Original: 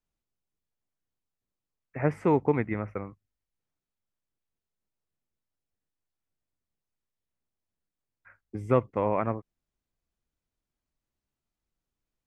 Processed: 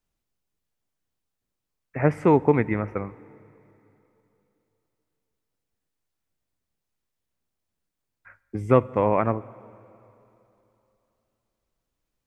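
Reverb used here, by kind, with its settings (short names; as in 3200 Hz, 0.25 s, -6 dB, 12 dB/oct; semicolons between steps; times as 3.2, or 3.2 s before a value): plate-style reverb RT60 3.1 s, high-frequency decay 1×, DRR 19.5 dB; gain +5.5 dB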